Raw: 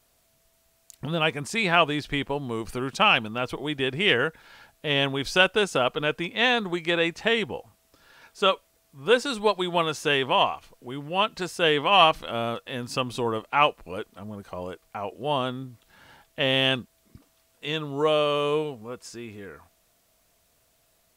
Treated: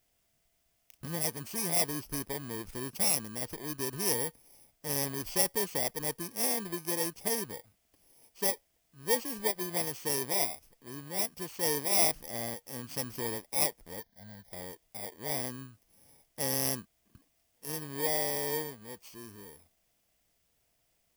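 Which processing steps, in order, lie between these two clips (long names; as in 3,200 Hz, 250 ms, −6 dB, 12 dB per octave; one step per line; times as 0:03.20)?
samples in bit-reversed order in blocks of 32 samples
0:14.00–0:14.51: phaser with its sweep stopped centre 1,800 Hz, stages 8
level −8.5 dB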